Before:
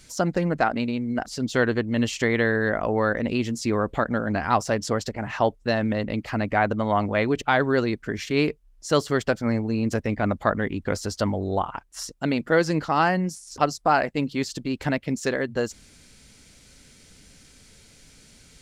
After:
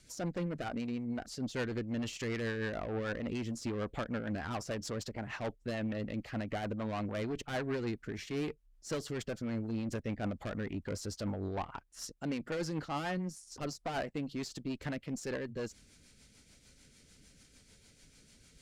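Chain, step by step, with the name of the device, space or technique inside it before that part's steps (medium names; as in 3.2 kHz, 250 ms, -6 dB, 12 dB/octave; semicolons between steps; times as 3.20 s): overdriven rotary cabinet (valve stage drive 23 dB, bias 0.3; rotary cabinet horn 6.7 Hz); trim -6.5 dB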